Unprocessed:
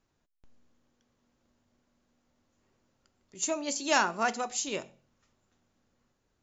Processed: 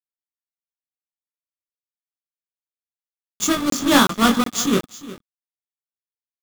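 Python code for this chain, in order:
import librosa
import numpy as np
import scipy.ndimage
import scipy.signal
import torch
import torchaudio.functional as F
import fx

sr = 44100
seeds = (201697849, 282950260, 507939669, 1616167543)

p1 = fx.halfwave_hold(x, sr)
p2 = fx.peak_eq(p1, sr, hz=690.0, db=-5.0, octaves=1.6)
p3 = fx.hum_notches(p2, sr, base_hz=50, count=7)
p4 = fx.rider(p3, sr, range_db=10, speed_s=0.5)
p5 = p3 + (p4 * librosa.db_to_amplitude(-1.5))
p6 = np.where(np.abs(p5) >= 10.0 ** (-29.0 / 20.0), p5, 0.0)
p7 = fx.vibrato(p6, sr, rate_hz=1.3, depth_cents=12.0)
p8 = fx.doubler(p7, sr, ms=21.0, db=-4)
p9 = fx.small_body(p8, sr, hz=(210.0, 1200.0, 3400.0), ring_ms=20, db=12)
p10 = p9 + fx.echo_single(p9, sr, ms=359, db=-16.5, dry=0)
p11 = fx.buffer_crackle(p10, sr, first_s=0.37, period_s=0.37, block=1024, kind='zero')
y = p11 * librosa.db_to_amplitude(-1.0)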